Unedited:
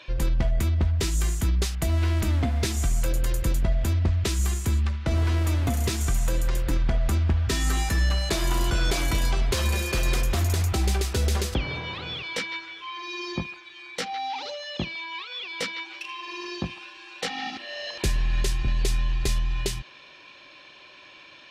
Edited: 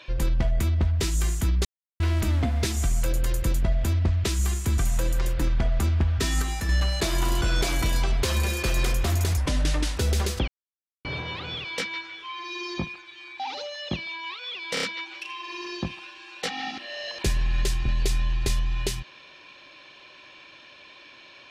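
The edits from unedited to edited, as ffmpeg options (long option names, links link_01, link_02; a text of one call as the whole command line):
ffmpeg -i in.wav -filter_complex "[0:a]asplit=13[link_01][link_02][link_03][link_04][link_05][link_06][link_07][link_08][link_09][link_10][link_11][link_12][link_13];[link_01]atrim=end=1.65,asetpts=PTS-STARTPTS,afade=type=out:start_time=1.646:duration=0.004:curve=hsin[link_14];[link_02]atrim=start=1.65:end=2,asetpts=PTS-STARTPTS,volume=0[link_15];[link_03]atrim=start=2:end=4.782,asetpts=PTS-STARTPTS,afade=type=in:duration=0.004:curve=hsin[link_16];[link_04]atrim=start=6.068:end=7.712[link_17];[link_05]atrim=start=7.708:end=7.982,asetpts=PTS-STARTPTS,volume=-4dB[link_18];[link_06]atrim=start=7.978:end=10.664[link_19];[link_07]atrim=start=10.66:end=11.12,asetpts=PTS-STARTPTS,asetrate=33957,aresample=44100,atrim=end_sample=26345,asetpts=PTS-STARTPTS[link_20];[link_08]atrim=start=11.116:end=11.63,asetpts=PTS-STARTPTS,afade=type=out:start_time=0.51:duration=0.004:curve=hsin,apad=pad_dur=0.57[link_21];[link_09]atrim=start=11.63:end=13.982,asetpts=PTS-STARTPTS,afade=type=in:duration=0.004:curve=hsin[link_22];[link_10]atrim=start=14.278:end=15.652[link_23];[link_11]atrim=start=15.618:end=15.652[link_24];[link_12]atrim=start=15.618:end=15.652[link_25];[link_13]atrim=start=15.618[link_26];[link_14][link_15][link_16]concat=n=3:v=0:a=1[link_27];[link_27][link_17]acrossfade=duration=0.004:curve1=hsin:curve2=hsin[link_28];[link_28][link_18]acrossfade=duration=0.004:curve1=hsin:curve2=hsin[link_29];[link_29][link_19]acrossfade=duration=0.004:curve1=hsin:curve2=hsin[link_30];[link_30][link_20]acrossfade=duration=0.004:curve1=hsin:curve2=hsin[link_31];[link_21][link_22]concat=n=2:v=0:a=1[link_32];[link_31][link_32]acrossfade=duration=0.004:curve1=hsin:curve2=hsin[link_33];[link_33][link_23]acrossfade=duration=0.004:curve1=hsin:curve2=hsin[link_34];[link_34][link_24]acrossfade=duration=0.004:curve1=hsin:curve2=hsin[link_35];[link_35][link_25]acrossfade=duration=0.004:curve1=hsin:curve2=hsin[link_36];[link_36][link_26]acrossfade=duration=0.004:curve1=hsin:curve2=hsin" out.wav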